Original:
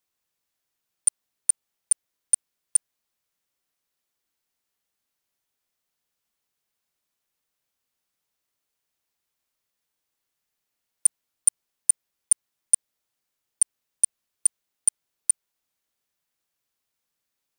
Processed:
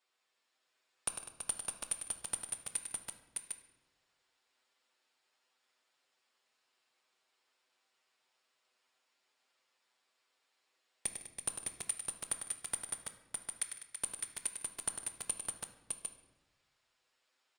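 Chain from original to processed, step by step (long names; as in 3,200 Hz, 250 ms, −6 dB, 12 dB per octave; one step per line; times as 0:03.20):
high-pass filter 410 Hz 12 dB per octave
high-shelf EQ 7,700 Hz +7.5 dB
notch filter 6,100 Hz, Q 9.7
brickwall limiter −14.5 dBFS, peak gain reduction 11.5 dB
speech leveller within 5 dB 0.5 s
flanger swept by the level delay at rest 8 ms, full sweep at −27.5 dBFS
high-frequency loss of the air 120 metres
multi-tap delay 100/155/200/330/609/753 ms −8/−19/−14/−8.5/−3.5/−5.5 dB
on a send at −8 dB: convolution reverb RT60 0.95 s, pre-delay 9 ms
on the sum: level +8.5 dB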